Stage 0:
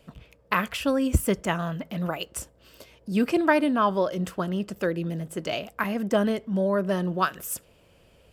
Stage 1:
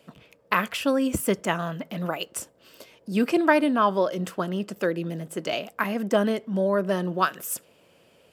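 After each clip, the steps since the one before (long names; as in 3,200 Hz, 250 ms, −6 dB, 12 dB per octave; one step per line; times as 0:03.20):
high-pass filter 180 Hz 12 dB per octave
level +1.5 dB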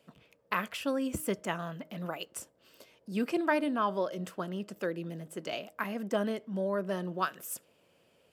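hum removal 310.6 Hz, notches 2
level −8.5 dB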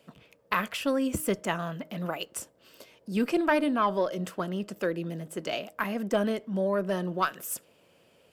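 one-sided soft clipper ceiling −13.5 dBFS
level +5 dB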